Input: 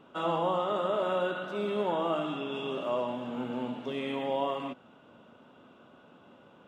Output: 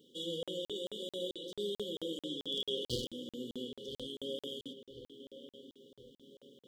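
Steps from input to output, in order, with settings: 2.47–3.08 s: high-order bell 1.3 kHz +11 dB 2.7 oct; 3.65–4.18 s: compression, threshold -35 dBFS, peak gain reduction 6 dB; tilt EQ +3.5 dB/octave; reverberation RT60 1.8 s, pre-delay 56 ms, DRR 12 dB; wavefolder -18.5 dBFS; brick-wall FIR band-stop 540–2900 Hz; filtered feedback delay 1023 ms, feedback 49%, low-pass 2.5 kHz, level -10.5 dB; flange 0.46 Hz, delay 0.1 ms, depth 3.8 ms, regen -67%; crackling interface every 0.22 s, samples 2048, zero, from 0.43 s; trim +3 dB

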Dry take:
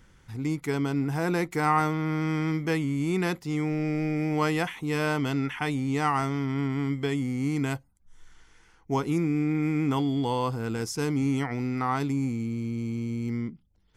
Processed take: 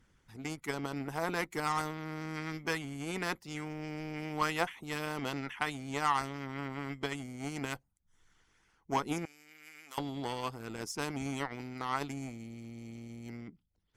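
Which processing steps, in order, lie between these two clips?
Chebyshev shaper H 7 -23 dB, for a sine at -12.5 dBFS; harmonic-percussive split harmonic -12 dB; 9.25–9.98 s: differentiator

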